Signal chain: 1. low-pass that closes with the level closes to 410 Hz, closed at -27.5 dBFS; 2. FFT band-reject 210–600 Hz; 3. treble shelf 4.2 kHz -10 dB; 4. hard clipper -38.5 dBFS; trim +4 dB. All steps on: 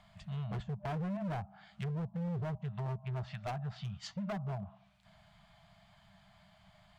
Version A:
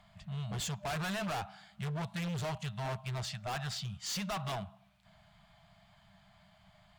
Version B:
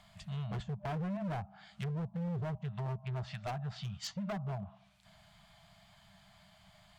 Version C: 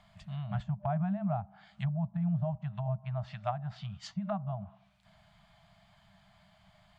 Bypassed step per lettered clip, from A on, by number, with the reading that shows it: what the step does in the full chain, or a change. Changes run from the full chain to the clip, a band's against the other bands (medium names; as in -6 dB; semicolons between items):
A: 1, 4 kHz band +10.5 dB; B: 3, 4 kHz band +3.5 dB; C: 4, distortion -8 dB